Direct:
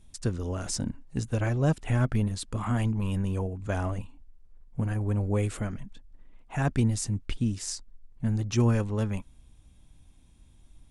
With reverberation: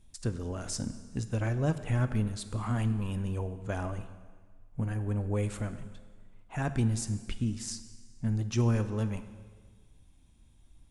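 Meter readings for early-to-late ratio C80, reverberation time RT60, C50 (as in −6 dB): 13.0 dB, 1.6 s, 12.0 dB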